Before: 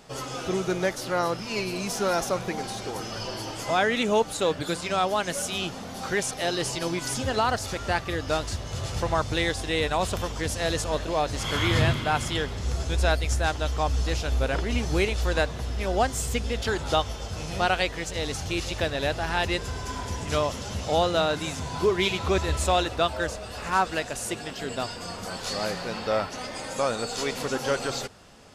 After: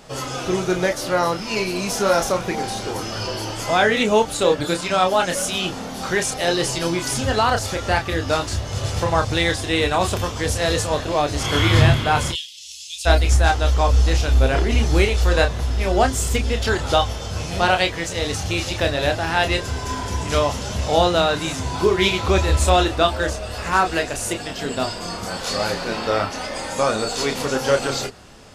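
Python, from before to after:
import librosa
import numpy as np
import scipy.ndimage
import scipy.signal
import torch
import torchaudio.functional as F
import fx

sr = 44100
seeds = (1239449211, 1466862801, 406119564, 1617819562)

y = fx.ellip_highpass(x, sr, hz=2800.0, order=4, stop_db=50, at=(12.31, 13.05), fade=0.02)
y = fx.chorus_voices(y, sr, voices=6, hz=0.16, base_ms=29, depth_ms=2.0, mix_pct=35)
y = y * librosa.db_to_amplitude(9.0)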